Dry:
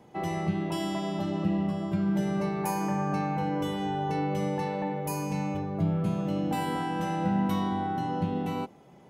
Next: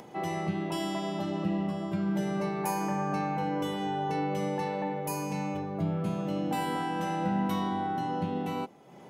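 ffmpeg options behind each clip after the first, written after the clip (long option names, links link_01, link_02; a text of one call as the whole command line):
ffmpeg -i in.wav -af "highpass=frequency=190:poles=1,acompressor=mode=upward:threshold=-41dB:ratio=2.5" out.wav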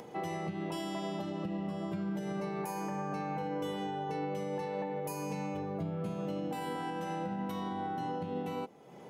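ffmpeg -i in.wav -af "equalizer=frequency=470:width=7.3:gain=7.5,alimiter=level_in=2.5dB:limit=-24dB:level=0:latency=1:release=230,volume=-2.5dB,volume=-1.5dB" out.wav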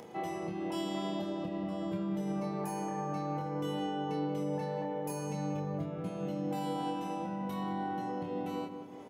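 ffmpeg -i in.wav -filter_complex "[0:a]asplit=2[link_01][link_02];[link_02]adelay=27,volume=-3.5dB[link_03];[link_01][link_03]amix=inputs=2:normalize=0,asplit=2[link_04][link_05];[link_05]adelay=184,lowpass=frequency=1800:poles=1,volume=-7.5dB,asplit=2[link_06][link_07];[link_07]adelay=184,lowpass=frequency=1800:poles=1,volume=0.55,asplit=2[link_08][link_09];[link_09]adelay=184,lowpass=frequency=1800:poles=1,volume=0.55,asplit=2[link_10][link_11];[link_11]adelay=184,lowpass=frequency=1800:poles=1,volume=0.55,asplit=2[link_12][link_13];[link_13]adelay=184,lowpass=frequency=1800:poles=1,volume=0.55,asplit=2[link_14][link_15];[link_15]adelay=184,lowpass=frequency=1800:poles=1,volume=0.55,asplit=2[link_16][link_17];[link_17]adelay=184,lowpass=frequency=1800:poles=1,volume=0.55[link_18];[link_06][link_08][link_10][link_12][link_14][link_16][link_18]amix=inputs=7:normalize=0[link_19];[link_04][link_19]amix=inputs=2:normalize=0,volume=-2dB" out.wav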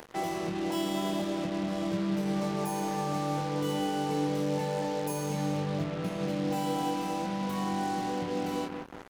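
ffmpeg -i in.wav -af "acrusher=bits=6:mix=0:aa=0.5,volume=4.5dB" out.wav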